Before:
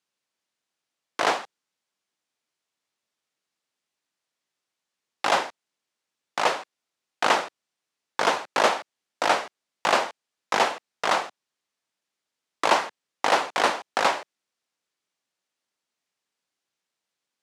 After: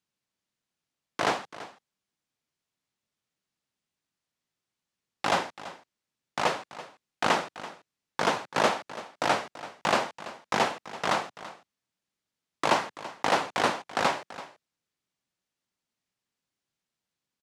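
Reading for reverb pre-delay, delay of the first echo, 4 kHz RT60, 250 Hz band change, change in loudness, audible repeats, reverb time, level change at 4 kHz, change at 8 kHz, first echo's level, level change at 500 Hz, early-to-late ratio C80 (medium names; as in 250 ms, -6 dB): no reverb, 334 ms, no reverb, +1.5 dB, -4.0 dB, 1, no reverb, -4.0 dB, -4.0 dB, -16.0 dB, -3.0 dB, no reverb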